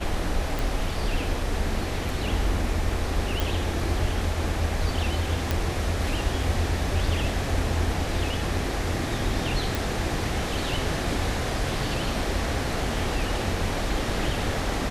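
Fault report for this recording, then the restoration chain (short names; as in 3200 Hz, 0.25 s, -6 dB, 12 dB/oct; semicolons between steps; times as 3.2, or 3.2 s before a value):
0.59 pop
3.4 pop
5.51 pop
9.75 pop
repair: de-click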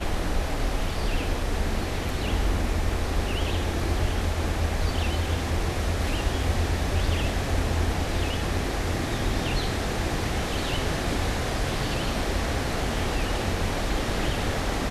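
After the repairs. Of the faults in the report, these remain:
9.75 pop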